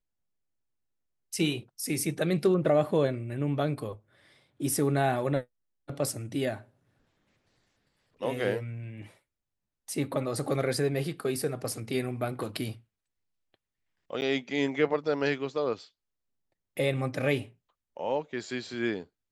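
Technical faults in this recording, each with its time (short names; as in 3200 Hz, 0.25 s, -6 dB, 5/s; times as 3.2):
14.21–14.22 gap 9.5 ms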